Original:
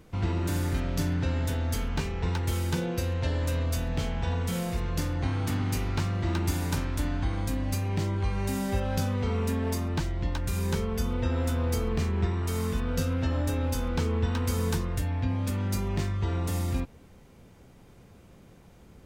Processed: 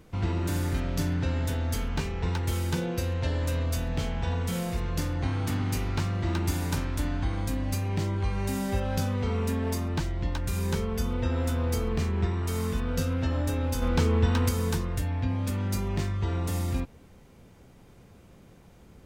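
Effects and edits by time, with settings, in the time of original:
0:13.82–0:14.49: clip gain +4 dB

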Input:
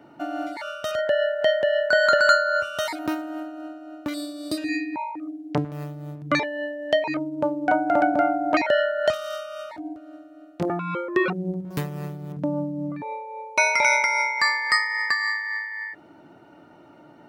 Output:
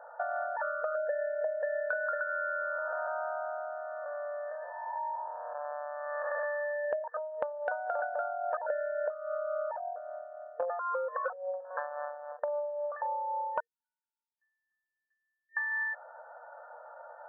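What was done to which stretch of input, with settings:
0:00.82–0:01.63: spectral envelope exaggerated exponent 1.5
0:02.23–0:06.85: spectrum smeared in time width 445 ms
0:07.43–0:07.99: downward compressor 1.5 to 1, threshold −27 dBFS
0:08.58–0:11.65: spectral tilt −4.5 dB per octave
0:12.42–0:13.08: double-tracking delay 44 ms −11 dB
0:13.60–0:15.57: inverse Chebyshev high-pass filter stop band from 1,400 Hz, stop band 80 dB
whole clip: brick-wall band-pass 470–1,800 Hz; dynamic equaliser 780 Hz, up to −6 dB, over −37 dBFS, Q 3.2; downward compressor 16 to 1, threshold −35 dBFS; level +5 dB

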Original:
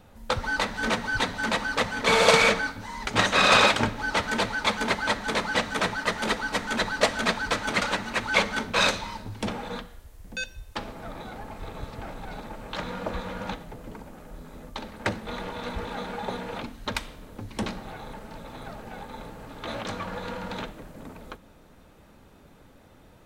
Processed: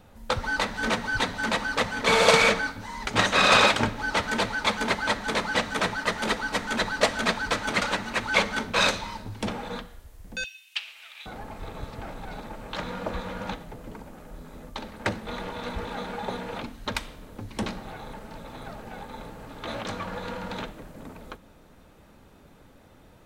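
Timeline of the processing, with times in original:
0:10.44–0:11.26: high-pass with resonance 2,700 Hz

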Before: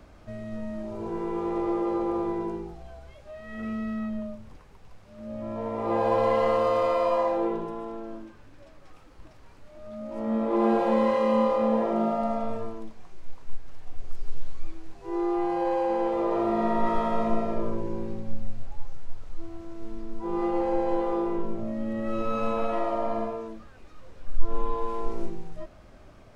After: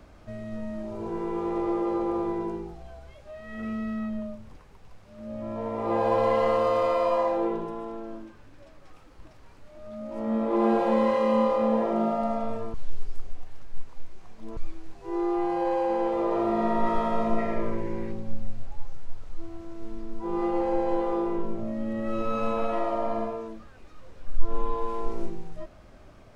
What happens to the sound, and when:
0:12.74–0:14.57: reverse
0:17.38–0:18.12: parametric band 2,000 Hz +13 dB 0.54 octaves

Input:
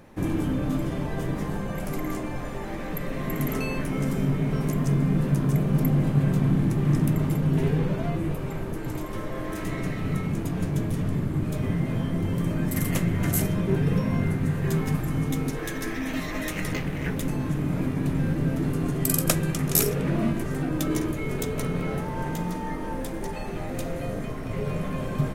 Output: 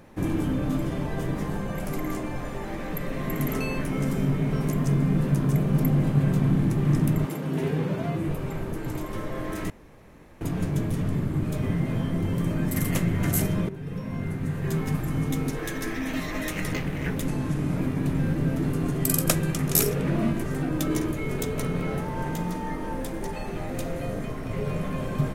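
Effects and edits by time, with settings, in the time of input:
0:07.25–0:08.27: high-pass filter 310 Hz → 78 Hz
0:09.70–0:10.41: fill with room tone
0:13.69–0:15.62: fade in equal-power, from −16.5 dB
0:17.26–0:17.77: variable-slope delta modulation 64 kbit/s

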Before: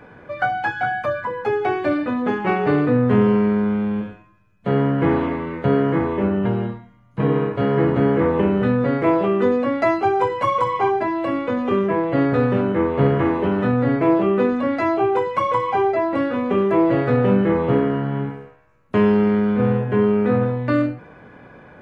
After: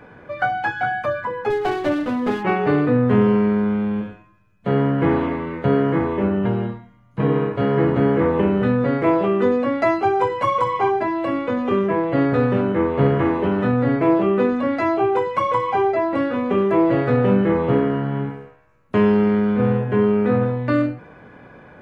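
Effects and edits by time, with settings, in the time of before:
0:01.50–0:02.43: windowed peak hold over 9 samples

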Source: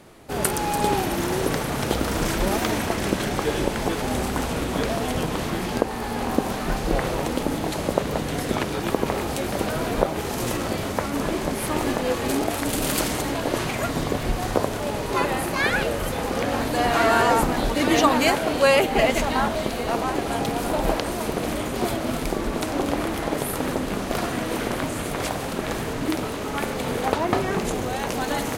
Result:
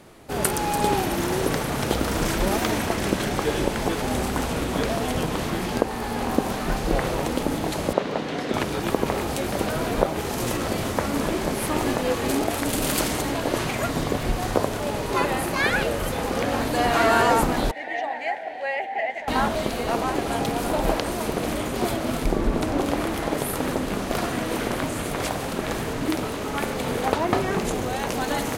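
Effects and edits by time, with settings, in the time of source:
0:07.93–0:08.54: three-way crossover with the lows and the highs turned down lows −18 dB, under 160 Hz, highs −19 dB, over 5,700 Hz
0:10.22–0:10.86: delay throw 380 ms, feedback 80%, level −8.5 dB
0:17.71–0:19.28: pair of resonant band-passes 1,200 Hz, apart 1.3 octaves
0:22.25–0:22.79: spectral tilt −1.5 dB per octave

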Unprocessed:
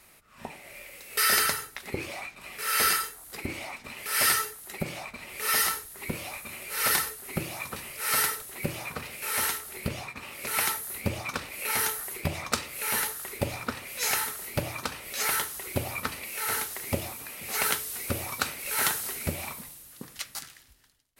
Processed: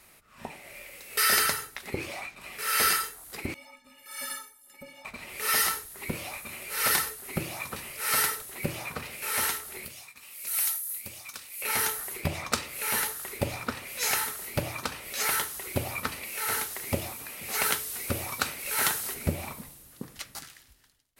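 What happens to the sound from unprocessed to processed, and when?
0:03.54–0:05.05: stiff-string resonator 260 Hz, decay 0.23 s, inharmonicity 0.03
0:09.85–0:11.62: first-order pre-emphasis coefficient 0.9
0:19.14–0:20.43: tilt shelving filter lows +4 dB, about 890 Hz

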